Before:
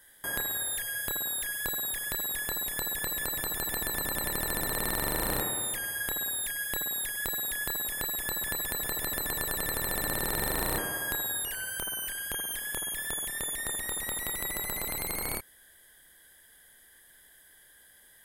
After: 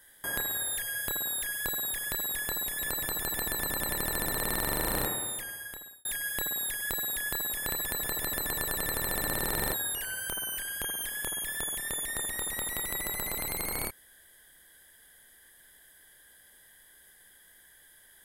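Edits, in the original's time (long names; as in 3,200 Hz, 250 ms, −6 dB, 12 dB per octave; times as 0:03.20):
0:02.79–0:03.14: remove
0:05.38–0:06.40: fade out
0:08.07–0:08.52: remove
0:10.54–0:11.24: remove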